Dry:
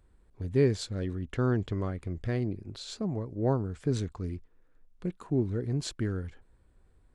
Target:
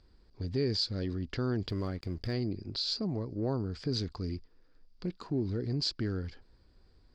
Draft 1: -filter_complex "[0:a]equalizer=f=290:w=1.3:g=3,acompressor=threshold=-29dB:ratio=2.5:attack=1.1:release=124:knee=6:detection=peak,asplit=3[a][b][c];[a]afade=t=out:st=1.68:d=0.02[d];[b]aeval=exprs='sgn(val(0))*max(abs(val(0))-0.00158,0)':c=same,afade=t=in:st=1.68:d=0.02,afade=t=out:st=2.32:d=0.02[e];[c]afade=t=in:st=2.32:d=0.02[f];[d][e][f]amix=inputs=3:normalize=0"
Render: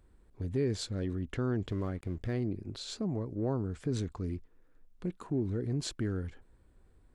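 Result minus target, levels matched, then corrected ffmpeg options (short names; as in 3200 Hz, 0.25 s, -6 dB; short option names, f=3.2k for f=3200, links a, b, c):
4000 Hz band -8.5 dB
-filter_complex "[0:a]lowpass=f=4.8k:t=q:w=14,equalizer=f=290:w=1.3:g=3,acompressor=threshold=-29dB:ratio=2.5:attack=1.1:release=124:knee=6:detection=peak,asplit=3[a][b][c];[a]afade=t=out:st=1.68:d=0.02[d];[b]aeval=exprs='sgn(val(0))*max(abs(val(0))-0.00158,0)':c=same,afade=t=in:st=1.68:d=0.02,afade=t=out:st=2.32:d=0.02[e];[c]afade=t=in:st=2.32:d=0.02[f];[d][e][f]amix=inputs=3:normalize=0"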